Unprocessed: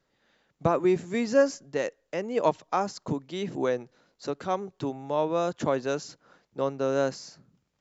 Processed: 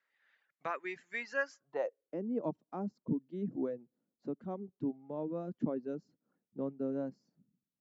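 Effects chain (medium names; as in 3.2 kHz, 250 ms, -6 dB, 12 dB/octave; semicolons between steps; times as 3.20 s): reverb removal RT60 1.1 s; band-pass sweep 1.9 kHz -> 230 Hz, 1.46–2.23 s; trim +1 dB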